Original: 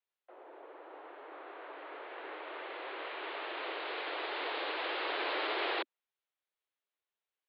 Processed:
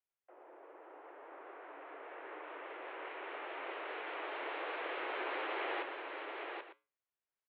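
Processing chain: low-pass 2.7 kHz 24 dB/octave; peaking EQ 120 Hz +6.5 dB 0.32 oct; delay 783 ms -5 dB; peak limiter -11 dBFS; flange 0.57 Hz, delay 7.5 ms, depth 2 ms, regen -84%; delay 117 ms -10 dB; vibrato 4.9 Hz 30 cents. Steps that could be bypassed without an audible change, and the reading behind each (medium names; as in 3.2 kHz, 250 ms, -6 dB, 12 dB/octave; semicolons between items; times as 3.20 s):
peaking EQ 120 Hz: input has nothing below 240 Hz; peak limiter -11 dBFS: peak at its input -23.0 dBFS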